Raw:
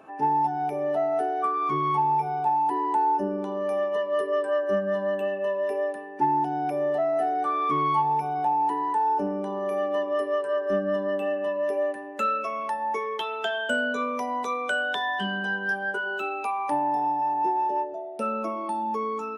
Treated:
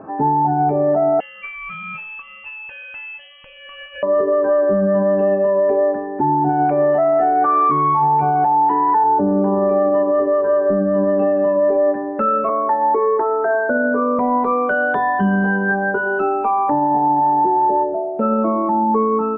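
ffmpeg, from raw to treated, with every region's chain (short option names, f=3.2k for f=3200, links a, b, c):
-filter_complex "[0:a]asettb=1/sr,asplit=3[a][b][c];[a]atrim=end=1.204[d];[b]atrim=start=1.2:end=4.03,asetpts=PTS-STARTPTS,afade=t=in:d=0.004:c=qsin,afade=t=out:st=2.826:d=0.004:c=qsin,highpass=f=550:p=1,lowpass=f=3k:t=q:w=0.5098,lowpass=f=3k:t=q:w=0.6013,lowpass=f=3k:t=q:w=0.9,lowpass=f=3k:t=q:w=2.563,afreqshift=-3500[e];[c]atrim=start=4.026[f];[d][e]acrossfade=d=0.004:c1=hsin:c2=qsin[g];[g][f]acrossfade=d=0.004:c1=qsin:c2=hsin,asettb=1/sr,asplit=3[h][i][j];[h]atrim=end=6.494[k];[i]atrim=start=6.49:end=9.04,asetpts=PTS-STARTPTS,afade=t=in:d=0.004:c=qsin,afade=t=out:st=2.546:d=0.004:c=qsin,equalizer=f=3.5k:w=0.31:g=14.5,tremolo=f=5.2:d=0.49[l];[j]atrim=start=9.036[m];[k][l]acrossfade=d=0.004:c1=hsin:c2=qsin[n];[n][m]acrossfade=d=0.004:c1=qsin:c2=hsin,asettb=1/sr,asplit=3[o][p][q];[o]atrim=end=12.494[r];[p]atrim=start=12.49:end=14.19,asetpts=PTS-STARTPTS,afade=t=in:d=0.004:c=qsin,afade=t=out:st=1.696:d=0.004:c=qsin,asuperstop=centerf=5100:order=20:qfactor=0.59,lowshelf=f=240:t=q:w=3:g=-6.5[s];[q]atrim=start=14.186[t];[r][s]acrossfade=d=0.004:c1=hsin:c2=qsin[u];[u][t]acrossfade=d=0.004:c1=qsin:c2=hsin,lowpass=f=1.5k:w=0.5412,lowpass=f=1.5k:w=1.3066,lowshelf=f=310:g=11.5,alimiter=level_in=19dB:limit=-1dB:release=50:level=0:latency=1,volume=-8.5dB"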